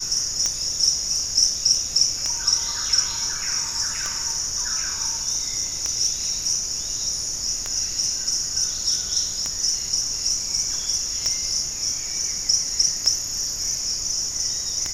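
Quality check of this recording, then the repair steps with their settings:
tick 33 1/3 rpm -10 dBFS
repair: de-click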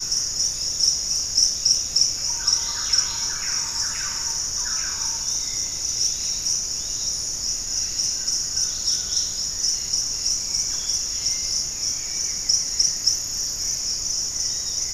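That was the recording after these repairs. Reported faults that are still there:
nothing left

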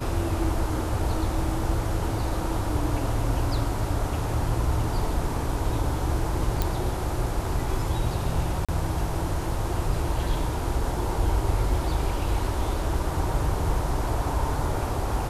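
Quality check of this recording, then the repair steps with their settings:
6.62 s: pop
8.65–8.69 s: dropout 36 ms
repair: de-click; interpolate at 8.65 s, 36 ms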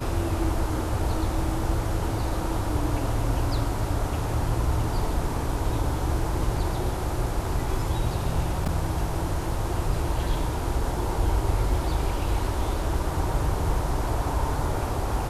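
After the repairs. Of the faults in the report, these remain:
nothing left

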